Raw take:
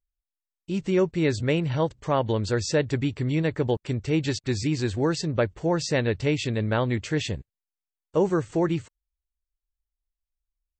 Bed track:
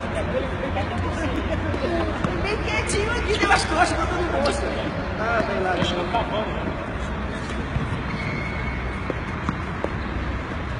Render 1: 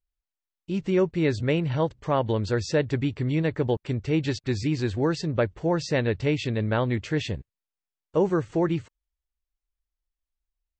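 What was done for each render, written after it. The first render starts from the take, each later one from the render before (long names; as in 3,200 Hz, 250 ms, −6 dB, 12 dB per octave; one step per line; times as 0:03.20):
high-frequency loss of the air 85 metres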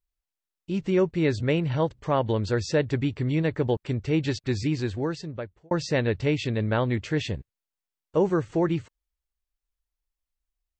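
0:04.66–0:05.71: fade out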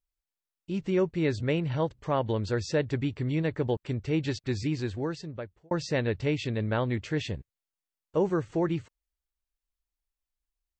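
level −3.5 dB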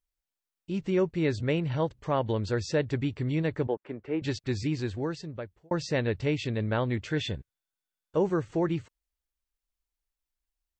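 0:03.67–0:04.22: three-way crossover with the lows and the highs turned down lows −19 dB, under 240 Hz, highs −24 dB, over 2,300 Hz
0:07.07–0:08.17: hollow resonant body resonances 1,500/3,500 Hz, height 13 dB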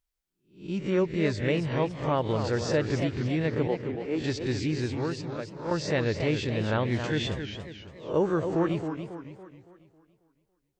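peak hold with a rise ahead of every peak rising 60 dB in 0.39 s
feedback echo with a swinging delay time 276 ms, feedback 44%, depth 200 cents, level −8 dB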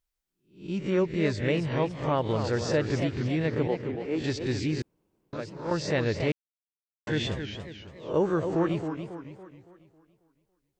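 0:04.82–0:05.33: fill with room tone
0:06.32–0:07.07: silence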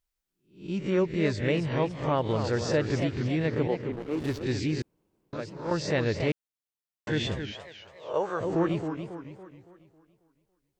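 0:03.92–0:04.43: slack as between gear wheels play −30 dBFS
0:07.52–0:08.41: low shelf with overshoot 420 Hz −12.5 dB, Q 1.5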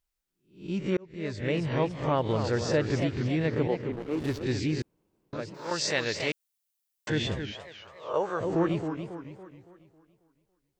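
0:00.97–0:01.68: fade in
0:05.54–0:07.10: spectral tilt +3.5 dB per octave
0:07.72–0:08.16: parametric band 1,200 Hz +10.5 dB 0.37 octaves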